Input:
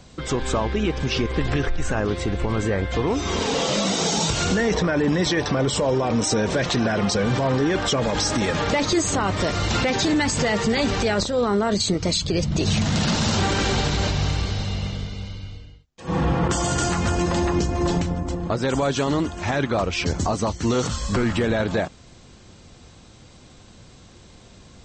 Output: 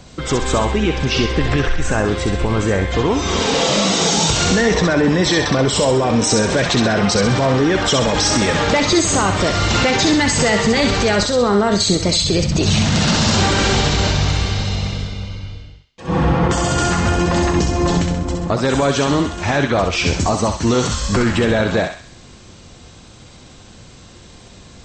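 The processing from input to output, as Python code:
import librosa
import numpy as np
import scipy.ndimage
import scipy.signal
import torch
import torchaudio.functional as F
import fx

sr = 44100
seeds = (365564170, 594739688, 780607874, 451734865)

y = fx.high_shelf(x, sr, hz=6600.0, db=-9.5, at=(15.07, 17.36))
y = fx.echo_thinned(y, sr, ms=65, feedback_pct=52, hz=1100.0, wet_db=-3.5)
y = y * librosa.db_to_amplitude(5.5)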